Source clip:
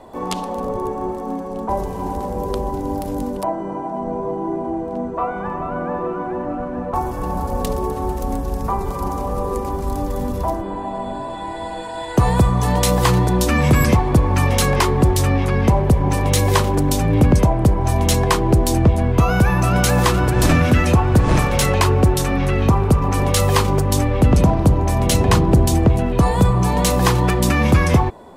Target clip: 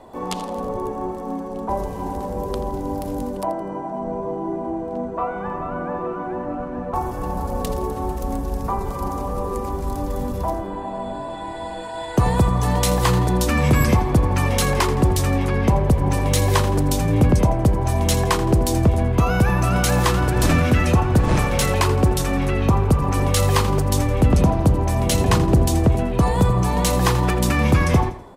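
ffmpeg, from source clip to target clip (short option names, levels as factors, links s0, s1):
-af "aecho=1:1:83|166|249|332:0.211|0.0845|0.0338|0.0135,volume=0.75"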